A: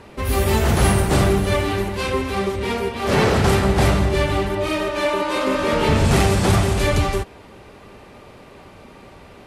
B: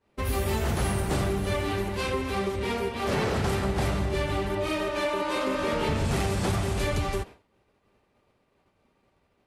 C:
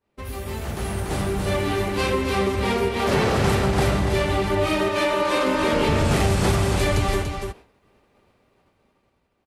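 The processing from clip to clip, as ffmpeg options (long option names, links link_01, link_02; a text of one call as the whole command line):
ffmpeg -i in.wav -af "agate=range=-33dB:threshold=-29dB:ratio=3:detection=peak,acompressor=threshold=-20dB:ratio=3,volume=-4.5dB" out.wav
ffmpeg -i in.wav -af "aecho=1:1:288:0.473,dynaudnorm=framelen=280:gausssize=9:maxgain=12dB,volume=-5dB" out.wav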